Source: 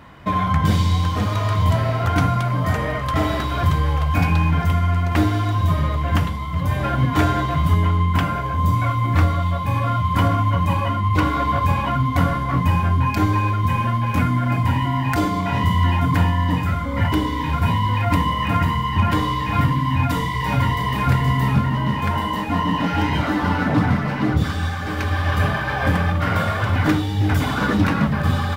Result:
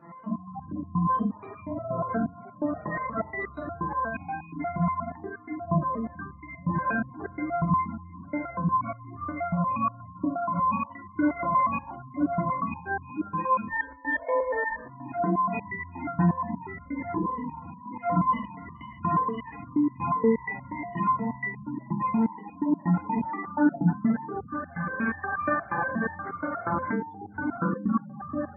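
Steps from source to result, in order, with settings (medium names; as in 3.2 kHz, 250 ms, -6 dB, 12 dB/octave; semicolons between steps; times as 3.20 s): low-pass 3 kHz 6 dB/octave; resonant low shelf 130 Hz -11.5 dB, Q 1.5; in parallel at +1 dB: peak limiter -16.5 dBFS, peak gain reduction 10.5 dB; 13.68–14.85 s: on the sum: ring modulator 760 Hz; reverberation, pre-delay 44 ms, DRR -3.5 dB; spectral gate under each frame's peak -15 dB strong; resonator arpeggio 8.4 Hz 170–1200 Hz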